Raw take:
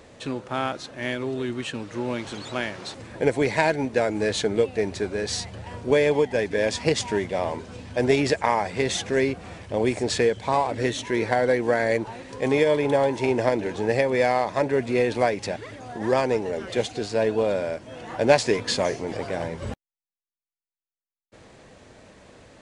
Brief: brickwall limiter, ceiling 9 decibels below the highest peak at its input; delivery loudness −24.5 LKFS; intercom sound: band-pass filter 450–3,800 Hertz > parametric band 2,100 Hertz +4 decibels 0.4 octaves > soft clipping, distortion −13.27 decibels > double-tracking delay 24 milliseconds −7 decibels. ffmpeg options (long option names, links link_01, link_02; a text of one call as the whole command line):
ffmpeg -i in.wav -filter_complex "[0:a]alimiter=limit=-12.5dB:level=0:latency=1,highpass=450,lowpass=3800,equalizer=frequency=2100:width_type=o:width=0.4:gain=4,asoftclip=threshold=-21.5dB,asplit=2[link_01][link_02];[link_02]adelay=24,volume=-7dB[link_03];[link_01][link_03]amix=inputs=2:normalize=0,volume=5dB" out.wav